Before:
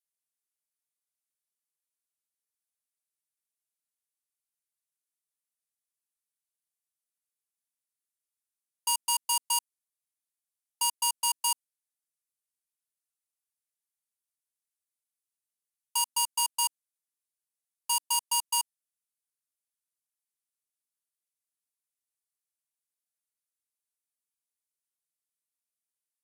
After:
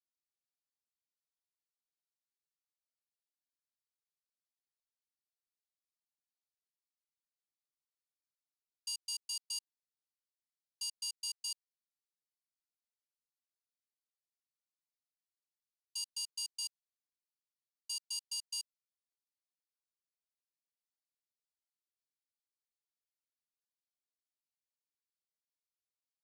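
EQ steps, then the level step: ladder band-pass 5 kHz, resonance 50%; +1.0 dB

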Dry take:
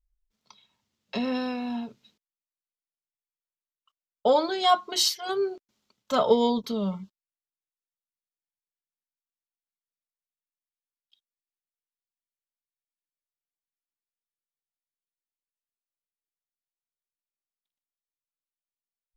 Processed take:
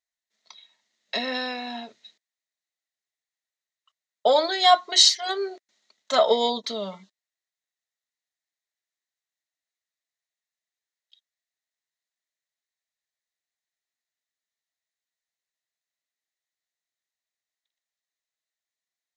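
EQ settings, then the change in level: cabinet simulation 320–7700 Hz, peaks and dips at 660 Hz +9 dB, 3.9 kHz +9 dB, 6.6 kHz +5 dB; peaking EQ 1.9 kHz +15 dB 0.39 oct; treble shelf 5 kHz +8.5 dB; -1.5 dB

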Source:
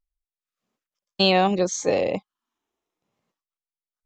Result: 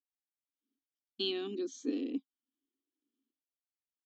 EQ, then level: vowel filter i; brick-wall FIR high-pass 200 Hz; static phaser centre 580 Hz, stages 6; +5.0 dB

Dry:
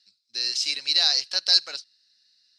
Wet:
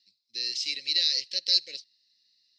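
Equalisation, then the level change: Chebyshev band-stop 540–1900 Hz, order 4; peaking EQ 10 kHz -14 dB 0.75 oct; -2.5 dB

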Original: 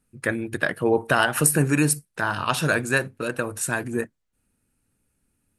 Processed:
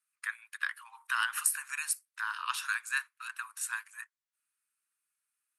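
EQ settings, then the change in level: steep high-pass 1 kHz 72 dB/octave; -8.5 dB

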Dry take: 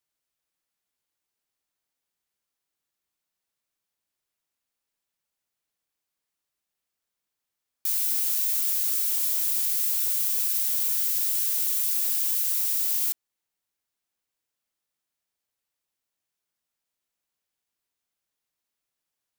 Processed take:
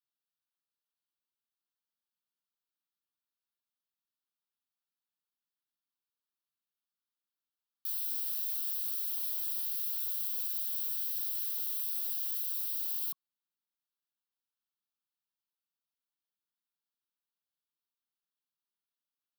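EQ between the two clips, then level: steep high-pass 150 Hz; band-stop 1.1 kHz, Q 29; static phaser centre 2.1 kHz, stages 6; -8.5 dB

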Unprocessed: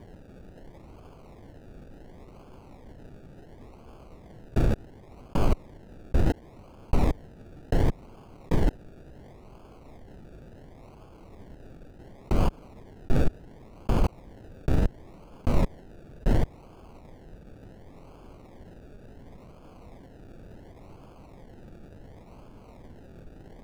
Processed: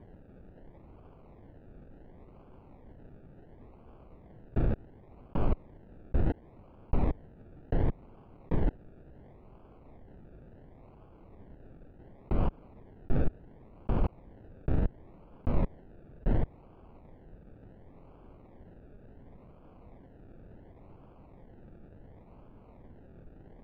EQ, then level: distance through air 450 m; -4.5 dB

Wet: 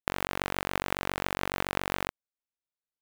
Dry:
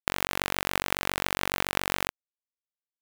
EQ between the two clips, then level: treble shelf 2.1 kHz -8.5 dB; 0.0 dB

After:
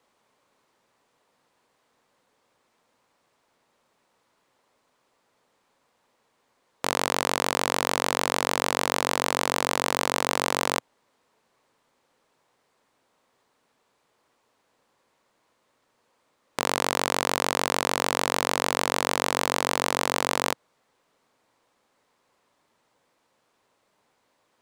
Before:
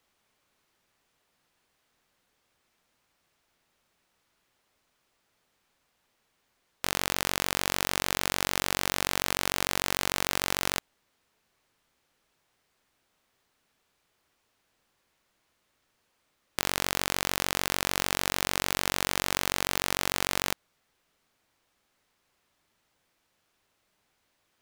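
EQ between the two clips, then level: graphic EQ 125/250/500/1000/2000/4000/8000 Hz +7/+9/+12/+12/+5/+5/+7 dB; -6.5 dB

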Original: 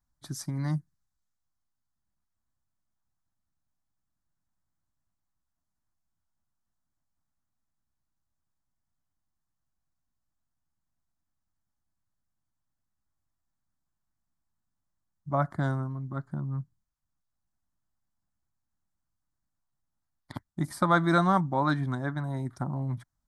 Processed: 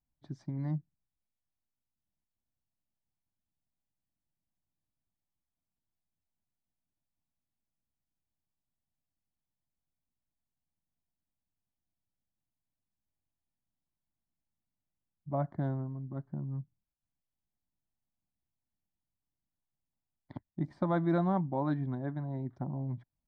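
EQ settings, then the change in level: tape spacing loss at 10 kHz 45 dB; bass shelf 140 Hz -8 dB; peaking EQ 1.3 kHz -12 dB 0.75 oct; 0.0 dB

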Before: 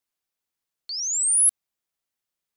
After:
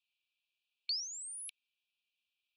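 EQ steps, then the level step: brick-wall FIR high-pass 2.3 kHz; low-pass 5 kHz 12 dB/octave; distance through air 480 m; +18.0 dB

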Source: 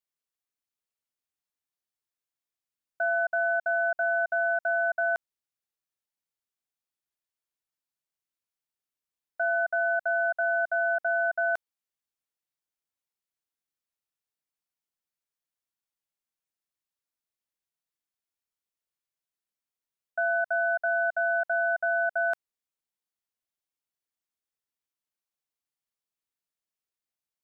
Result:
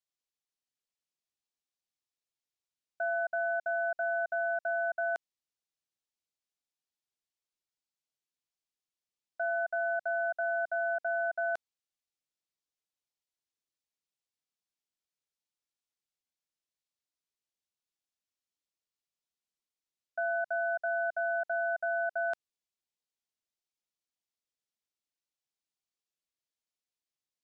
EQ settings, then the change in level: distance through air 87 m; bass shelf 440 Hz -11.5 dB; peaking EQ 1.4 kHz -13 dB 2.5 oct; +7.5 dB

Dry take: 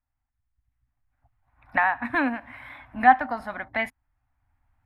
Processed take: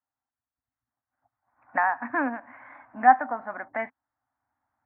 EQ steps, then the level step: high-pass 280 Hz 12 dB/octave; low-pass 1.7 kHz 24 dB/octave; distance through air 61 m; 0.0 dB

